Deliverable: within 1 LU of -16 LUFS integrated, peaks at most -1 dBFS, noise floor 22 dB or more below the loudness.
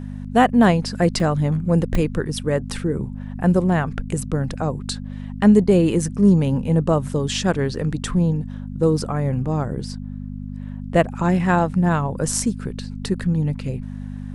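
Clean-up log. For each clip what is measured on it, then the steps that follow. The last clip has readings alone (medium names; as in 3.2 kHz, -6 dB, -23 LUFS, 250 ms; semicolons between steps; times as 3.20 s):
dropouts 2; longest dropout 2.2 ms; hum 50 Hz; highest harmonic 250 Hz; hum level -30 dBFS; loudness -20.5 LUFS; peak level -2.0 dBFS; loudness target -16.0 LUFS
-> interpolate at 1.20/1.95 s, 2.2 ms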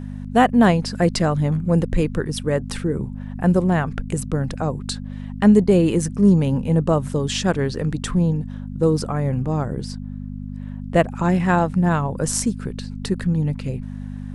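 dropouts 0; hum 50 Hz; highest harmonic 250 Hz; hum level -30 dBFS
-> de-hum 50 Hz, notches 5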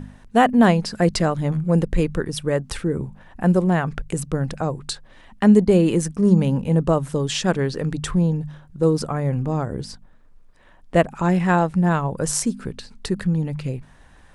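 hum not found; loudness -21.0 LUFS; peak level -2.5 dBFS; loudness target -16.0 LUFS
-> trim +5 dB; peak limiter -1 dBFS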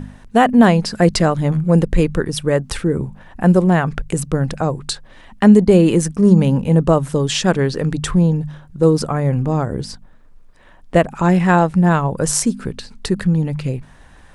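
loudness -16.0 LUFS; peak level -1.0 dBFS; noise floor -44 dBFS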